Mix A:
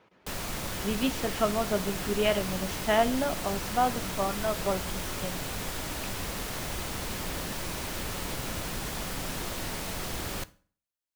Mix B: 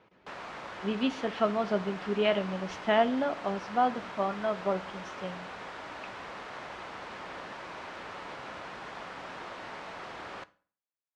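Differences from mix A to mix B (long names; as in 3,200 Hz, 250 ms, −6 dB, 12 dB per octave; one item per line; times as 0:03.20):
background: add resonant band-pass 1,100 Hz, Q 0.82
master: add high-frequency loss of the air 87 metres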